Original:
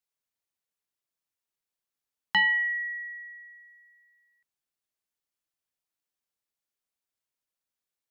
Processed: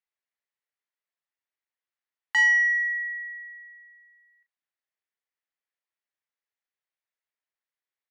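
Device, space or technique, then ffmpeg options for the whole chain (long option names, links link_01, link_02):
intercom: -filter_complex "[0:a]highpass=410,lowpass=3600,equalizer=frequency=1900:width_type=o:width=0.45:gain=7.5,asoftclip=type=tanh:threshold=-14dB,asplit=2[link_01][link_02];[link_02]adelay=36,volume=-8dB[link_03];[link_01][link_03]amix=inputs=2:normalize=0,volume=-3dB"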